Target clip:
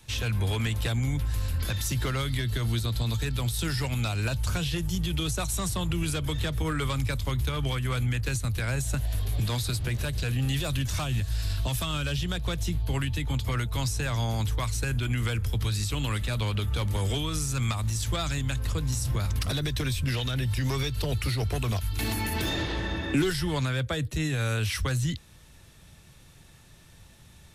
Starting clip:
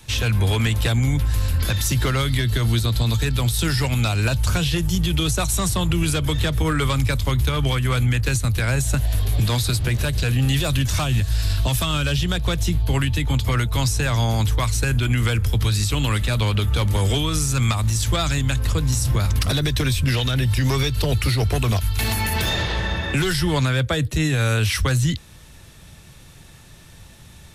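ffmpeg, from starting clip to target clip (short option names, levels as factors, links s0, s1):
-filter_complex "[0:a]asettb=1/sr,asplit=3[s0][s1][s2];[s0]atrim=end=21.934[s3];[s1]atrim=start=21.93:end=23.3,asetpts=PTS-STARTPTS,afade=t=in:d=0.004:c=qsin,afade=t=out:st=1.366:d=0.004:c=qsin,equalizer=f=300:t=o:w=0.52:g=13.5[s4];[s2]atrim=start=23.296[s5];[s3][s4]acrossfade=d=0.004:c1=hsin:c2=qsin[s6];[s6][s5]acrossfade=d=0.004:c1=qsin:c2=hsin,volume=0.398"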